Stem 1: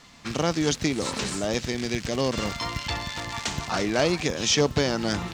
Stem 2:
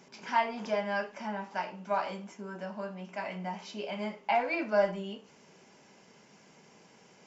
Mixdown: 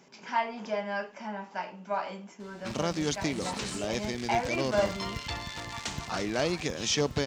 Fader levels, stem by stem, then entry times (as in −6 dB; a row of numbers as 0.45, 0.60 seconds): −6.0, −1.0 decibels; 2.40, 0.00 seconds